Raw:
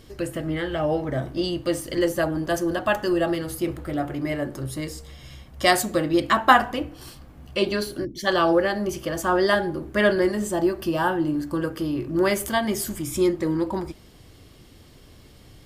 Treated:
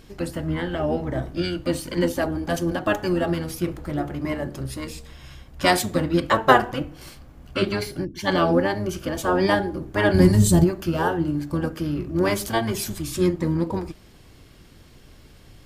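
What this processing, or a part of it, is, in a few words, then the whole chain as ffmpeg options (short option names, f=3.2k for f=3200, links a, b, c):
octave pedal: -filter_complex "[0:a]asplit=2[a][b];[b]asetrate=22050,aresample=44100,atempo=2,volume=-3dB[c];[a][c]amix=inputs=2:normalize=0,asplit=3[d][e][f];[d]afade=t=out:st=10.13:d=0.02[g];[e]bass=f=250:g=15,treble=f=4k:g=12,afade=t=in:st=10.13:d=0.02,afade=t=out:st=10.63:d=0.02[h];[f]afade=t=in:st=10.63:d=0.02[i];[g][h][i]amix=inputs=3:normalize=0,volume=-1.5dB"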